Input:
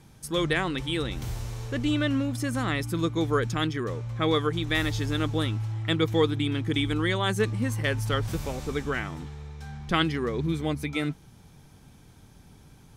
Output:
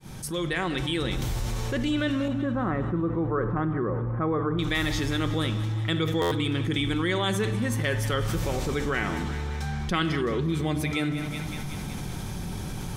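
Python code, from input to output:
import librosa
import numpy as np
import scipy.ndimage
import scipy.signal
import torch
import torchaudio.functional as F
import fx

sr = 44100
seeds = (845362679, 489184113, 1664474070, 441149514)

y = fx.fade_in_head(x, sr, length_s=1.36)
y = fx.lowpass(y, sr, hz=1400.0, slope=24, at=(2.28, 4.59))
y = fx.echo_thinned(y, sr, ms=188, feedback_pct=60, hz=510.0, wet_db=-17.0)
y = fx.room_shoebox(y, sr, seeds[0], volume_m3=2100.0, walls='furnished', distance_m=1.0)
y = fx.buffer_glitch(y, sr, at_s=(6.21,), block=512, repeats=8)
y = fx.env_flatten(y, sr, amount_pct=70)
y = F.gain(torch.from_numpy(y), -3.5).numpy()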